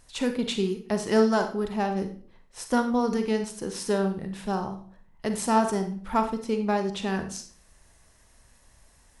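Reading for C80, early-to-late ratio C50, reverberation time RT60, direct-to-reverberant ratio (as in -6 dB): 14.0 dB, 9.0 dB, 0.50 s, 6.5 dB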